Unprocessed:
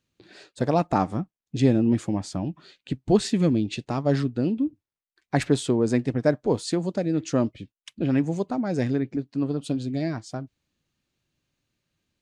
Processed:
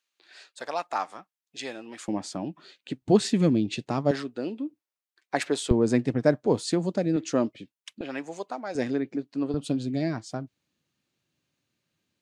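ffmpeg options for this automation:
ffmpeg -i in.wav -af "asetnsamples=nb_out_samples=441:pad=0,asendcmd='2.08 highpass f 250;3.02 highpass f 120;4.11 highpass f 420;5.71 highpass f 110;7.16 highpass f 230;8.01 highpass f 620;8.75 highpass f 260;9.54 highpass f 120',highpass=970" out.wav

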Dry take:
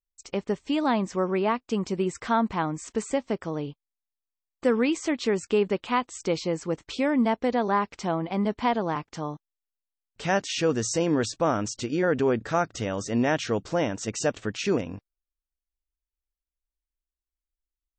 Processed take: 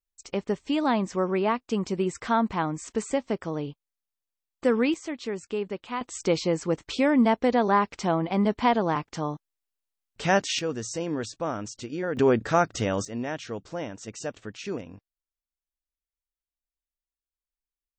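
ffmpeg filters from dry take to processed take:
ffmpeg -i in.wav -af "asetnsamples=nb_out_samples=441:pad=0,asendcmd='4.94 volume volume -7dB;6.01 volume volume 2.5dB;10.59 volume volume -6dB;12.17 volume volume 3dB;13.05 volume volume -8dB',volume=0dB" out.wav

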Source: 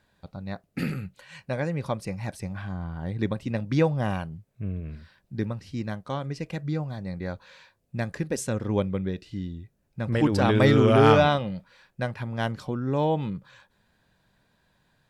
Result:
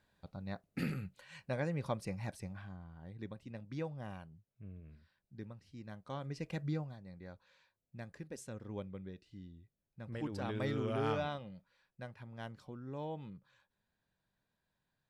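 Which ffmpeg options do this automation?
ffmpeg -i in.wav -af "volume=4dB,afade=type=out:start_time=2.2:duration=0.64:silence=0.298538,afade=type=in:start_time=5.82:duration=0.83:silence=0.251189,afade=type=out:start_time=6.65:duration=0.34:silence=0.266073" out.wav

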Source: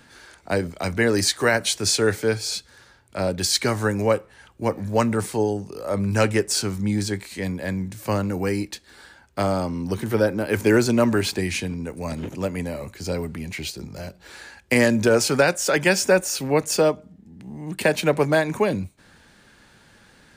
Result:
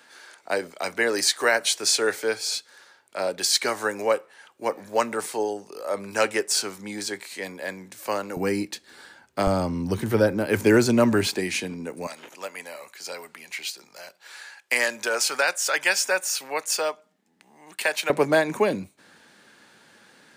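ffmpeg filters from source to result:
ffmpeg -i in.wav -af "asetnsamples=nb_out_samples=441:pad=0,asendcmd='8.37 highpass f 170;9.47 highpass f 45;10.34 highpass f 100;11.27 highpass f 240;12.07 highpass f 880;18.1 highpass f 230',highpass=460" out.wav

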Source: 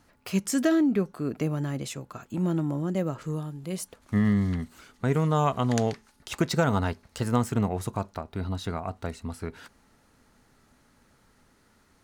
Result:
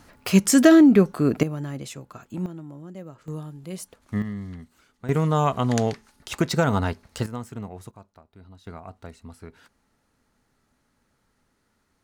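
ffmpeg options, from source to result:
ffmpeg -i in.wav -af "asetnsamples=nb_out_samples=441:pad=0,asendcmd='1.43 volume volume -1.5dB;2.46 volume volume -11.5dB;3.28 volume volume -2dB;4.22 volume volume -9.5dB;5.09 volume volume 2.5dB;7.26 volume volume -9.5dB;7.91 volume volume -17dB;8.67 volume volume -7.5dB',volume=9.5dB" out.wav

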